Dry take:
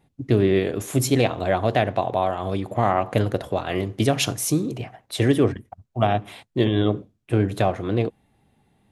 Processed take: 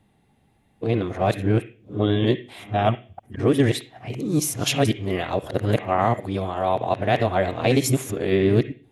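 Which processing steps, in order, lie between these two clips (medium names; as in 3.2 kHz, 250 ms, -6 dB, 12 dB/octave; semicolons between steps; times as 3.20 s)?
reverse the whole clip; on a send: high-order bell 2.4 kHz +14.5 dB 1.3 oct + reverberation RT60 0.40 s, pre-delay 46 ms, DRR 9.5 dB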